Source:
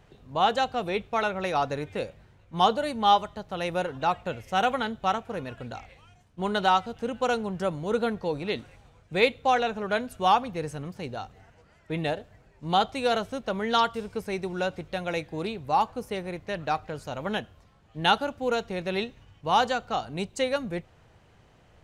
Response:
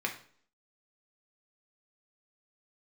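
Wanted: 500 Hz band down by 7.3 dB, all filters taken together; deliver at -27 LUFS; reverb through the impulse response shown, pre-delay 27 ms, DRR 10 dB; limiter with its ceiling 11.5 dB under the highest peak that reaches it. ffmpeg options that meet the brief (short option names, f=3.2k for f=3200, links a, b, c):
-filter_complex "[0:a]equalizer=f=500:t=o:g=-9,alimiter=limit=-21dB:level=0:latency=1,asplit=2[a][b];[1:a]atrim=start_sample=2205,adelay=27[c];[b][c]afir=irnorm=-1:irlink=0,volume=-16dB[d];[a][d]amix=inputs=2:normalize=0,volume=6.5dB"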